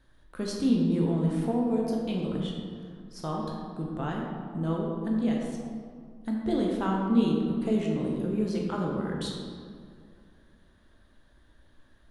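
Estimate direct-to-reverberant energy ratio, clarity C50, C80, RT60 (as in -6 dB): -1.5 dB, 1.0 dB, 2.5 dB, 2.2 s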